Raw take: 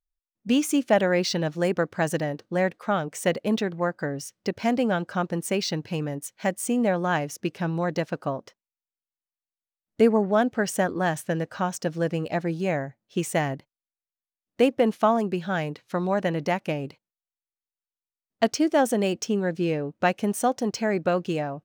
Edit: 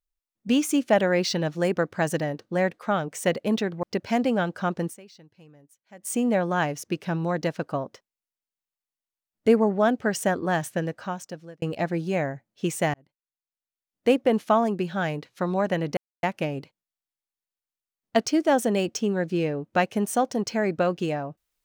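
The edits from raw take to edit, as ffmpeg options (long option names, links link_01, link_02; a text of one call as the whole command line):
ffmpeg -i in.wav -filter_complex "[0:a]asplit=7[link_01][link_02][link_03][link_04][link_05][link_06][link_07];[link_01]atrim=end=3.832[link_08];[link_02]atrim=start=4.358:end=5.69,asetpts=PTS-STARTPTS,afade=type=out:start_time=1.072:duration=0.26:curve=exp:silence=0.0707946[link_09];[link_03]atrim=start=5.69:end=6.32,asetpts=PTS-STARTPTS,volume=-23dB[link_10];[link_04]atrim=start=6.32:end=12.15,asetpts=PTS-STARTPTS,afade=type=in:duration=0.26:curve=exp:silence=0.0707946,afade=type=out:start_time=4.94:duration=0.89[link_11];[link_05]atrim=start=12.15:end=13.47,asetpts=PTS-STARTPTS,afade=type=in:duration=0.004:curve=hsin,afade=type=out:start_time=1.316:duration=0.004:curve=hsin[link_12];[link_06]atrim=start=13.47:end=16.5,asetpts=PTS-STARTPTS,afade=type=in:duration=1.16,afade=type=out:start_time=3.026:duration=0.004:curve=hsin,apad=pad_dur=0.26[link_13];[link_07]atrim=start=16.5,asetpts=PTS-STARTPTS,afade=type=in:duration=0.004:curve=hsin[link_14];[link_09][link_10][link_11][link_12][link_13][link_14]concat=n=6:v=0:a=1[link_15];[link_08][link_15]acrossfade=duration=0.004:curve1=hsin:curve2=hsin" out.wav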